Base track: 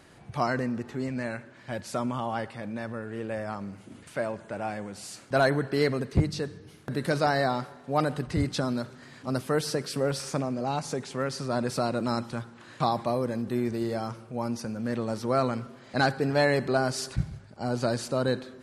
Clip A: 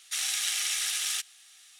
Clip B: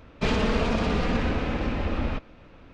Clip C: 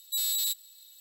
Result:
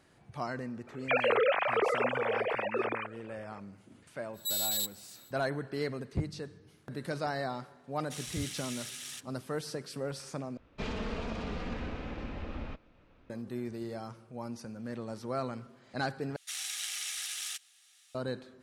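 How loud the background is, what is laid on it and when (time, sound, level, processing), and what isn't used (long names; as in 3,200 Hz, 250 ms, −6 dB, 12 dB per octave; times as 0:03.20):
base track −9.5 dB
0:00.87: mix in B −5 dB + three sine waves on the formant tracks
0:04.33: mix in C −3 dB, fades 0.05 s
0:07.99: mix in A −13 dB
0:10.57: overwrite with B −12.5 dB
0:16.36: overwrite with A −8 dB + low-shelf EQ 140 Hz −6.5 dB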